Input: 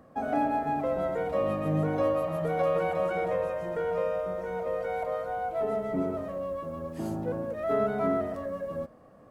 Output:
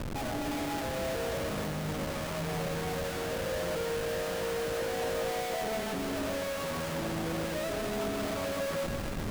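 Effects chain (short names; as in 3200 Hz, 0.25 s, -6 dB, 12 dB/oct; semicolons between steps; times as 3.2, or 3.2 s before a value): negative-ratio compressor -38 dBFS, ratio -1; Schmitt trigger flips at -43.5 dBFS; on a send: split-band echo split 1100 Hz, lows 0.14 s, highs 0.266 s, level -5 dB; on the sum: gain +2 dB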